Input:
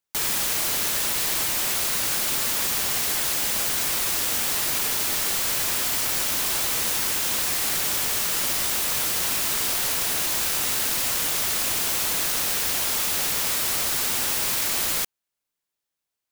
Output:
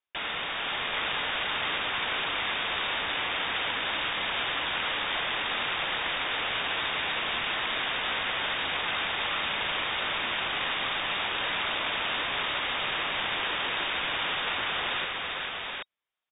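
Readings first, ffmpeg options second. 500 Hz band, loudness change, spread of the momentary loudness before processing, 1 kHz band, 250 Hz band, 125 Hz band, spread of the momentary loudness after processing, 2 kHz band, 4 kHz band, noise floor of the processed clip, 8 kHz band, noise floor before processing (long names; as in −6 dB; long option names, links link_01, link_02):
−1.0 dB, −7.0 dB, 0 LU, +2.0 dB, −4.5 dB, −6.5 dB, 1 LU, +2.5 dB, −1.0 dB, −36 dBFS, below −40 dB, −85 dBFS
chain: -filter_complex "[0:a]highpass=48,asplit=2[link_01][link_02];[link_02]aecho=0:1:447|777:0.596|0.708[link_03];[link_01][link_03]amix=inputs=2:normalize=0,lowpass=frequency=3200:width_type=q:width=0.5098,lowpass=frequency=3200:width_type=q:width=0.6013,lowpass=frequency=3200:width_type=q:width=0.9,lowpass=frequency=3200:width_type=q:width=2.563,afreqshift=-3800"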